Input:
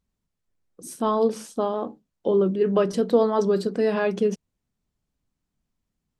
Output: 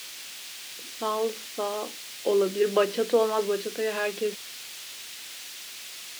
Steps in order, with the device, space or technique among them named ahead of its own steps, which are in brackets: shortwave radio (BPF 330–2500 Hz; tremolo 0.38 Hz, depth 43%; white noise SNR 17 dB); weighting filter D

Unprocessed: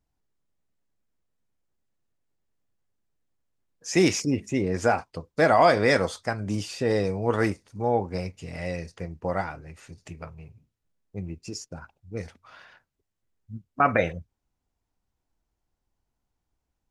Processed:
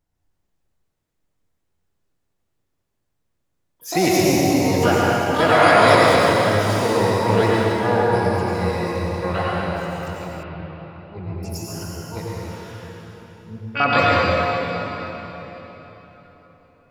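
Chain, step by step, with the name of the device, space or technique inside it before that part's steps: shimmer-style reverb (harmoniser +12 st -5 dB; reverb RT60 4.1 s, pre-delay 83 ms, DRR -5.5 dB); 10.43–11.43 steep low-pass 4000 Hz 36 dB/oct

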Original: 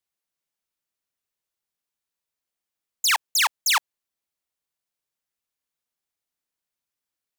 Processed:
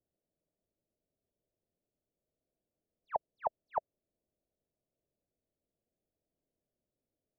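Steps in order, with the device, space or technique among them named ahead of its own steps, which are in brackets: under water (LPF 500 Hz 24 dB/oct; bell 640 Hz +9 dB 0.41 oct); gain +11 dB

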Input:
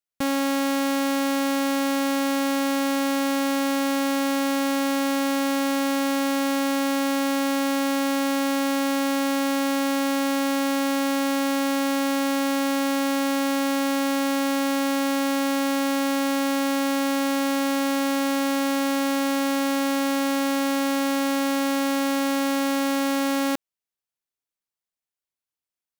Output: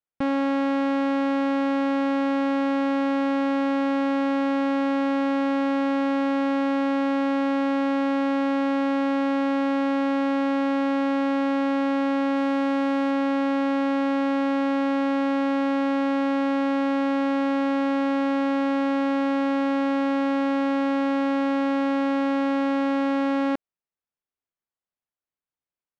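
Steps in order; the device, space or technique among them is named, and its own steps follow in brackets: phone in a pocket (LPF 3100 Hz 12 dB/oct; high shelf 2400 Hz -9 dB); 12.36–13.11 high shelf 9600 Hz +5 dB; gain +1 dB

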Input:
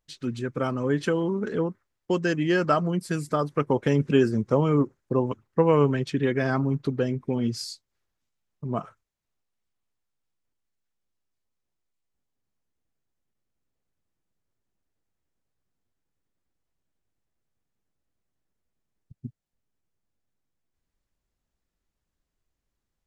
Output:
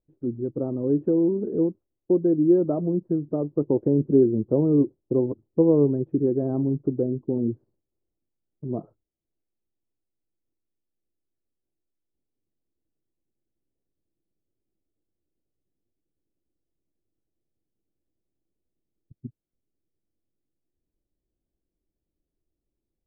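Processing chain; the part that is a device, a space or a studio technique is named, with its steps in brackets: under water (LPF 650 Hz 24 dB/oct; bell 330 Hz +10 dB 0.52 oct); gain -2 dB

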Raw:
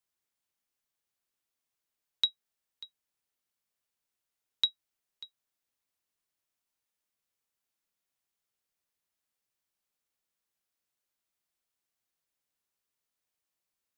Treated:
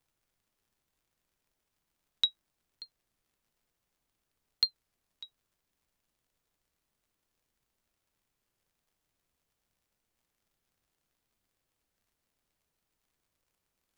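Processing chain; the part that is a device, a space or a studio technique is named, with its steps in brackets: warped LP (record warp 33 1/3 rpm, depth 160 cents; crackle; pink noise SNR 39 dB)

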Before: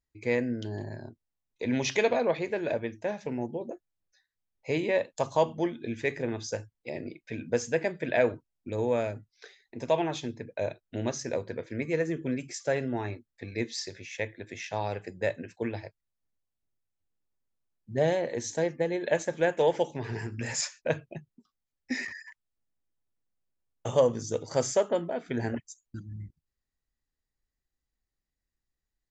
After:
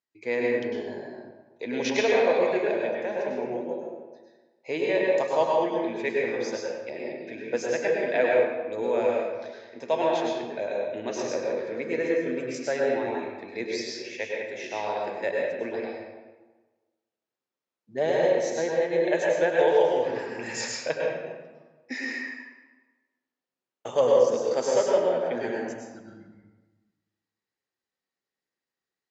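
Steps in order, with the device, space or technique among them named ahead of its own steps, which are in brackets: supermarket ceiling speaker (BPF 300–5800 Hz; reverb RT60 1.3 s, pre-delay 95 ms, DRR -3 dB)

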